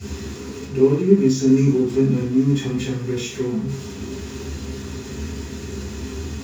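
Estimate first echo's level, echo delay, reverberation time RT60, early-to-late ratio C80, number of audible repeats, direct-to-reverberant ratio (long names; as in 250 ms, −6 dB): no echo audible, no echo audible, 0.45 s, 10.0 dB, no echo audible, −10.5 dB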